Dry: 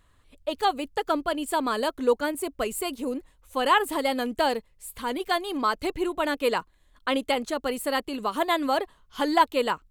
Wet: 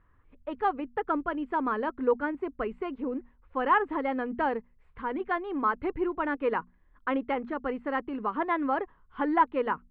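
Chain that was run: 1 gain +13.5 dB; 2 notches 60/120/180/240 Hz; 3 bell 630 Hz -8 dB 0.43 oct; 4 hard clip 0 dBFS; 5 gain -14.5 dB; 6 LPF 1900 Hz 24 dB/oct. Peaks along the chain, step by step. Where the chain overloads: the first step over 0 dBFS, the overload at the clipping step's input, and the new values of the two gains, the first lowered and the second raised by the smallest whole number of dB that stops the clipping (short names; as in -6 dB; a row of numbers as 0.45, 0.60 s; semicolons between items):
+5.0, +5.0, +4.5, 0.0, -14.5, -13.5 dBFS; step 1, 4.5 dB; step 1 +8.5 dB, step 5 -9.5 dB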